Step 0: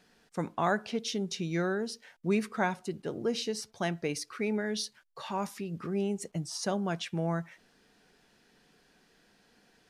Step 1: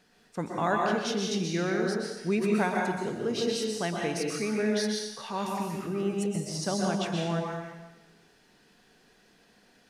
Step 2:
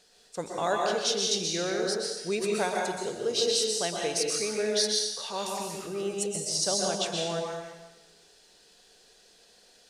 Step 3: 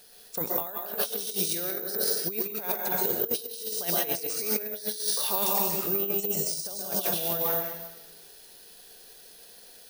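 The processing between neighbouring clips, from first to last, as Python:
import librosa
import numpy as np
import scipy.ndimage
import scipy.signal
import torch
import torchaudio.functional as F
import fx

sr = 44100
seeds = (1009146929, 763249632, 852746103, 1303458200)

y1 = fx.rev_plate(x, sr, seeds[0], rt60_s=1.1, hf_ratio=1.0, predelay_ms=110, drr_db=-1.0)
y2 = fx.graphic_eq(y1, sr, hz=(125, 250, 500, 1000, 2000, 4000, 8000), db=(-7, -10, 6, -3, -4, 7, 10))
y3 = fx.over_compress(y2, sr, threshold_db=-33.0, ratio=-0.5)
y3 = (np.kron(scipy.signal.resample_poly(y3, 1, 3), np.eye(3)[0]) * 3)[:len(y3)]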